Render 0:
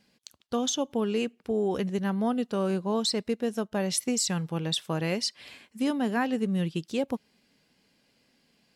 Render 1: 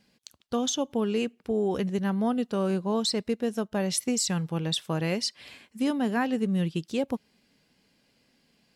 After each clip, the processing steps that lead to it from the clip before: low shelf 150 Hz +3.5 dB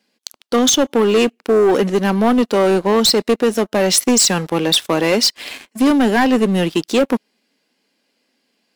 HPF 240 Hz 24 dB/oct; sample leveller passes 3; gain +7 dB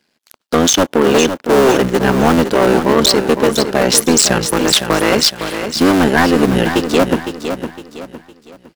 cycle switcher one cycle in 3, muted; bell 1500 Hz +3.5 dB 0.49 oct; on a send: feedback echo 0.509 s, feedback 35%, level -8.5 dB; on the sum: gain +3.5 dB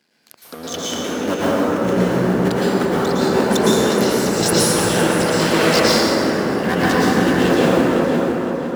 negative-ratio compressor -18 dBFS, ratio -0.5; HPF 88 Hz; plate-style reverb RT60 4.6 s, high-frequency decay 0.35×, pre-delay 0.1 s, DRR -9.5 dB; gain -7.5 dB

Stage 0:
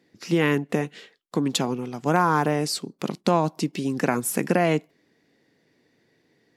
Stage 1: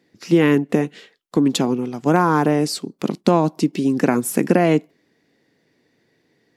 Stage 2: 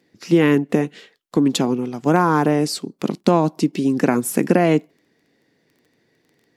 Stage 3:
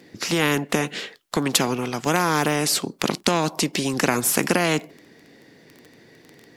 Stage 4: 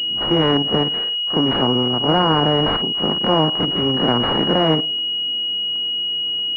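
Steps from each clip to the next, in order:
dynamic EQ 290 Hz, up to +7 dB, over -36 dBFS, Q 0.88; gain +1.5 dB
crackle 13/s -43 dBFS
spectral compressor 2:1
stepped spectrum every 50 ms; reverse echo 32 ms -10 dB; pulse-width modulation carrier 2900 Hz; gain +5.5 dB

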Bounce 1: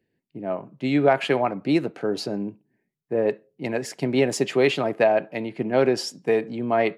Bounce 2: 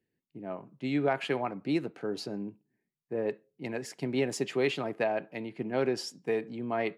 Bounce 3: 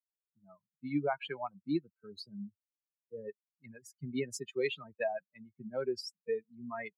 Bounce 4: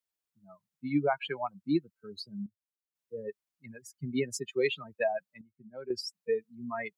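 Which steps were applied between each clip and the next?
bell 610 Hz -4 dB 0.5 oct; gain -8 dB
per-bin expansion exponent 3
step gate "xxxxxxxxxx.." 61 bpm -12 dB; gain +4.5 dB

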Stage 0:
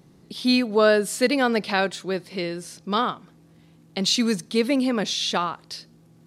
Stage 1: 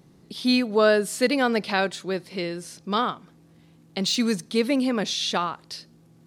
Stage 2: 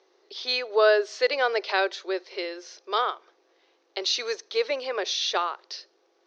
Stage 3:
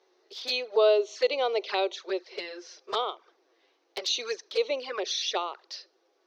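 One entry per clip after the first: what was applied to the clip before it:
de-esser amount 45%; gain -1 dB
Chebyshev band-pass 370–6100 Hz, order 5
envelope flanger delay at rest 11.6 ms, full sweep at -23.5 dBFS

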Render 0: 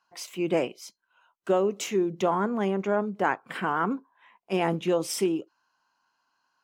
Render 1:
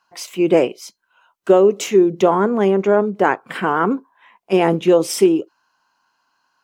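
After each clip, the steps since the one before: dynamic EQ 420 Hz, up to +6 dB, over -38 dBFS, Q 1.5; gain +7.5 dB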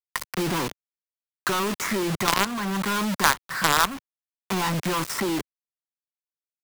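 EQ curve 110 Hz 0 dB, 230 Hz -10 dB, 590 Hz -26 dB, 1000 Hz +3 dB, 1900 Hz 0 dB, 2900 Hz -30 dB, 4700 Hz -19 dB, 6800 Hz -17 dB, 11000 Hz -22 dB; companded quantiser 2-bit; three-band squash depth 70%; gain -2.5 dB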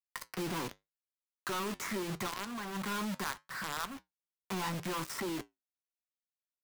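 limiter -13 dBFS, peak gain reduction 11 dB; flange 0.77 Hz, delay 7.2 ms, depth 3.5 ms, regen -71%; gain -6.5 dB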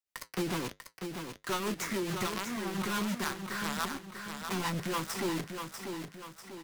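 rotary speaker horn 7 Hz; on a send: feedback echo 0.643 s, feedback 46%, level -6.5 dB; on the sum: gain +5 dB

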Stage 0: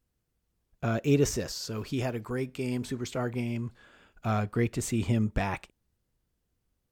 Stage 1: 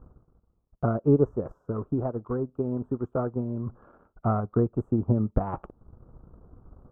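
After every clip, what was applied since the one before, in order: elliptic low-pass 1300 Hz, stop band 40 dB; reverse; upward compressor, threshold -30 dBFS; reverse; transient shaper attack +6 dB, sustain -10 dB; gain +1.5 dB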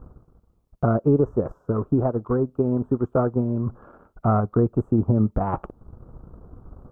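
limiter -17.5 dBFS, peak gain reduction 8.5 dB; gain +7 dB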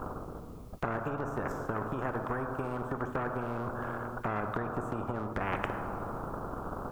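compressor, threshold -22 dBFS, peak gain reduction 8.5 dB; on a send at -9 dB: reverb RT60 1.9 s, pre-delay 3 ms; on the sum: spectral compressor 4:1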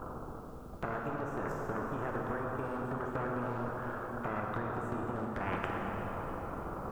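plate-style reverb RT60 3.8 s, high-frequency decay 0.85×, pre-delay 0 ms, DRR 1 dB; gain -4.5 dB

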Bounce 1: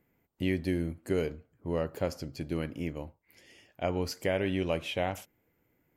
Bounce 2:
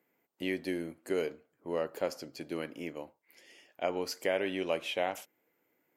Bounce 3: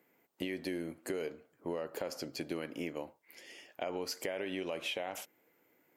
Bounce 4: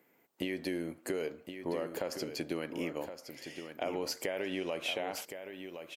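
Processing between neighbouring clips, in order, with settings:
HPF 330 Hz 12 dB/oct
limiter -25 dBFS, peak gain reduction 8.5 dB; compressor, threshold -39 dBFS, peak gain reduction 9 dB; gain +5 dB
echo 1.067 s -9 dB; gain +2 dB

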